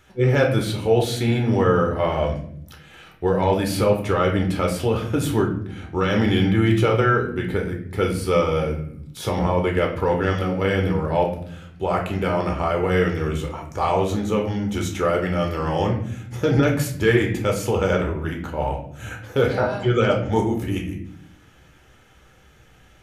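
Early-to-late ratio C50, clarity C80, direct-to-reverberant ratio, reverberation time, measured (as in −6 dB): 8.0 dB, 11.0 dB, 0.5 dB, 0.65 s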